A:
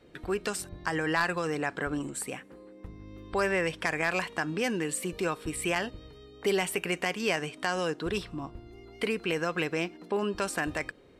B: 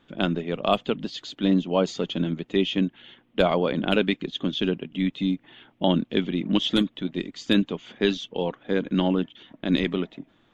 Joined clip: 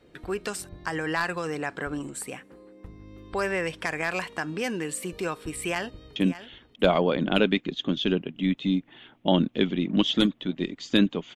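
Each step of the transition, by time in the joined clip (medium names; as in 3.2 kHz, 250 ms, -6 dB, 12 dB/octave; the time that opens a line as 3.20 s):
A
5.61–6.16 s: echo throw 590 ms, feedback 20%, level -13 dB
6.16 s: go over to B from 2.72 s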